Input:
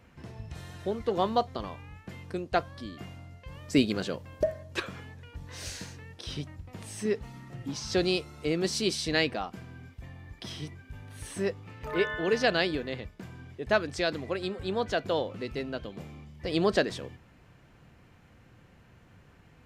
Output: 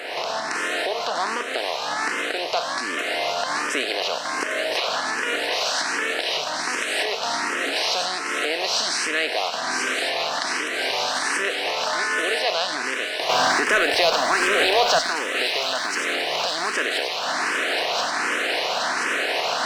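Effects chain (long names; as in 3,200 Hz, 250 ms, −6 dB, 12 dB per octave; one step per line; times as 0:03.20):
compressor on every frequency bin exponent 0.4
camcorder AGC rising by 45 dB per second
high-pass filter 730 Hz 12 dB per octave
high-shelf EQ 7,500 Hz −5 dB
in parallel at −2.5 dB: brickwall limiter −16.5 dBFS, peak gain reduction 10 dB
0:13.29–0:14.99: on the sum: leveller curve on the samples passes 2
on a send: delay with a high-pass on its return 1,030 ms, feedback 72%, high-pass 2,000 Hz, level −4 dB
on the sum: frequency shifter mixed with the dry sound +1.3 Hz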